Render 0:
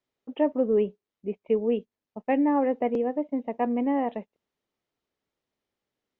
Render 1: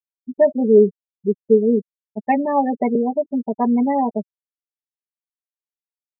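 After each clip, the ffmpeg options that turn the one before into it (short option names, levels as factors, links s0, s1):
-af "bandreject=f=530:w=12,afftfilt=real='re*gte(hypot(re,im),0.0631)':imag='im*gte(hypot(re,im),0.0631)':win_size=1024:overlap=0.75,aecho=1:1:5:0.83,volume=2.24"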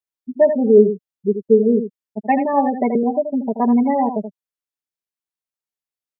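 -af "aecho=1:1:80:0.355,volume=1.12"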